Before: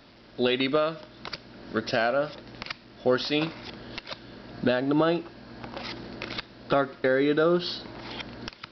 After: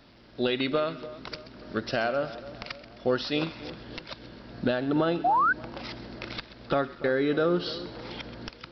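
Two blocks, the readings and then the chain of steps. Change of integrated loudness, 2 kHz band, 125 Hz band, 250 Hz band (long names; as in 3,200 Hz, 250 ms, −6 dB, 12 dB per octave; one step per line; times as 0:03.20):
−1.5 dB, −0.5 dB, −0.5 dB, −2.0 dB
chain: low-shelf EQ 150 Hz +4.5 dB
echo with a time of its own for lows and highs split 1,300 Hz, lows 290 ms, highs 131 ms, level −15 dB
sound drawn into the spectrogram rise, 0:05.24–0:05.53, 670–1,600 Hz −19 dBFS
level −3 dB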